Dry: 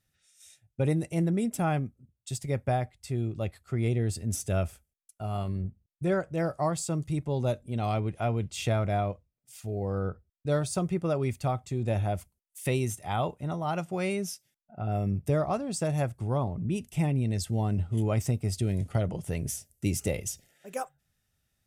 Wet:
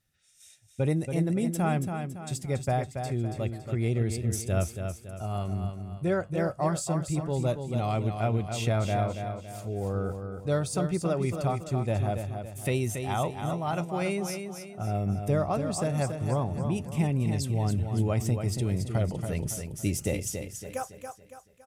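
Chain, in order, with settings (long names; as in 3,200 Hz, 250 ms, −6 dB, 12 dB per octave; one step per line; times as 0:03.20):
repeating echo 280 ms, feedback 42%, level −7 dB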